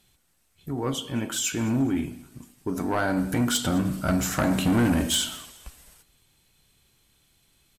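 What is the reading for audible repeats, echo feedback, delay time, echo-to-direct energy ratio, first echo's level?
2, 33%, 211 ms, -21.5 dB, -22.0 dB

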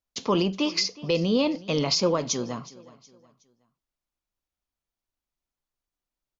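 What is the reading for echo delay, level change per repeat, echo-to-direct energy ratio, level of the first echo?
368 ms, -8.5 dB, -19.5 dB, -20.0 dB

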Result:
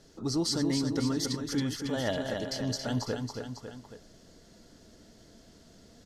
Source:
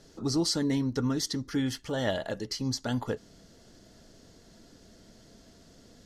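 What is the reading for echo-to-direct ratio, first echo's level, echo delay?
-4.0 dB, -5.5 dB, 275 ms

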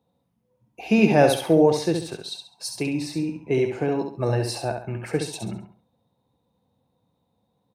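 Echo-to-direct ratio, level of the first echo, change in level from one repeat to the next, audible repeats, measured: -5.5 dB, -6.0 dB, -10.0 dB, 3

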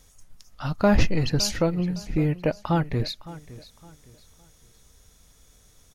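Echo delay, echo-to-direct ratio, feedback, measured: 561 ms, -17.0 dB, 31%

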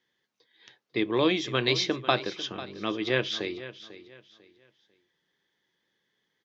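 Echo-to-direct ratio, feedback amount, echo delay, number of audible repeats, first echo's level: -14.5 dB, 29%, 496 ms, 2, -15.0 dB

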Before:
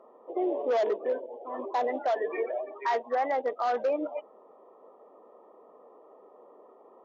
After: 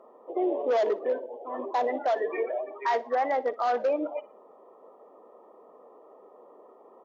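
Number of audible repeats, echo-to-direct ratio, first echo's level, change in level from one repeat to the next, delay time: 2, -19.5 dB, -20.0 dB, -10.0 dB, 60 ms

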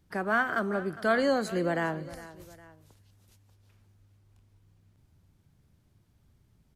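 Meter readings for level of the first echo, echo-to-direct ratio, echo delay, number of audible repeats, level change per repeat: -17.0 dB, -16.0 dB, 408 ms, 2, -6.5 dB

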